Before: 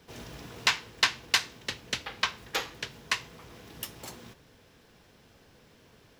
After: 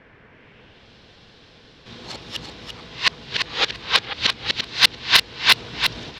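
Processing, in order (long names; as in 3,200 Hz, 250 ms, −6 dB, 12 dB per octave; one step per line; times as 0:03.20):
played backwards from end to start
low-pass filter sweep 2,000 Hz → 4,100 Hz, 0:00.30–0:00.92
hard clipping −11.5 dBFS, distortion −14 dB
on a send: repeating echo 341 ms, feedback 16%, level −6 dB
on the sum: level +7 dB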